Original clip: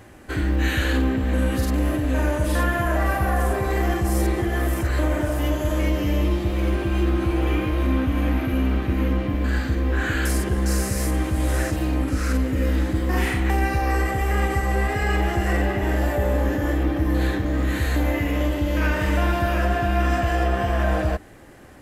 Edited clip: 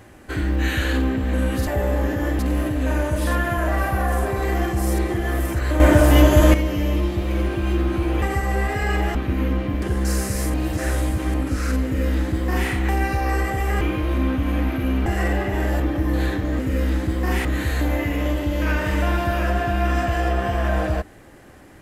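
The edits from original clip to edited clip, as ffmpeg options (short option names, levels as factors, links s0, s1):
-filter_complex "[0:a]asplit=15[s0][s1][s2][s3][s4][s5][s6][s7][s8][s9][s10][s11][s12][s13][s14];[s0]atrim=end=1.672[s15];[s1]atrim=start=16.088:end=16.812[s16];[s2]atrim=start=1.668:end=5.082[s17];[s3]atrim=start=5.078:end=5.822,asetpts=PTS-STARTPTS,volume=3.16[s18];[s4]atrim=start=5.818:end=7.502[s19];[s5]atrim=start=14.418:end=15.352[s20];[s6]atrim=start=8.748:end=9.422[s21];[s7]atrim=start=10.428:end=11.152[s22];[s8]atrim=start=11.148:end=11.952,asetpts=PTS-STARTPTS,areverse[s23];[s9]atrim=start=11.948:end=14.422[s24];[s10]atrim=start=7.498:end=8.752[s25];[s11]atrim=start=15.348:end=16.092[s26];[s12]atrim=start=16.808:end=17.602[s27];[s13]atrim=start=12.448:end=13.312[s28];[s14]atrim=start=17.598[s29];[s15][s16]acrossfade=d=0.004:c1=hsin:c2=hsin[s30];[s30][s17]acrossfade=d=0.004:c1=hsin:c2=hsin[s31];[s31][s18]acrossfade=d=0.004:c1=hsin:c2=hsin[s32];[s32][s19]acrossfade=d=0.004:c1=hsin:c2=hsin[s33];[s33][s20]acrossfade=d=0.004:c1=hsin:c2=hsin[s34];[s34][s21]acrossfade=d=0.004:c1=hsin:c2=hsin[s35];[s35][s22]acrossfade=d=0.004:c1=hsin:c2=hsin[s36];[s36][s23]acrossfade=d=0.004:c1=hsin:c2=hsin[s37];[s37][s24]acrossfade=d=0.004:c1=hsin:c2=hsin[s38];[s38][s25]acrossfade=d=0.004:c1=hsin:c2=hsin[s39];[s39][s26]acrossfade=d=0.004:c1=hsin:c2=hsin[s40];[s40][s27]acrossfade=d=0.004:c1=hsin:c2=hsin[s41];[s41][s28]acrossfade=d=0.004:c1=hsin:c2=hsin[s42];[s42][s29]acrossfade=d=0.004:c1=hsin:c2=hsin"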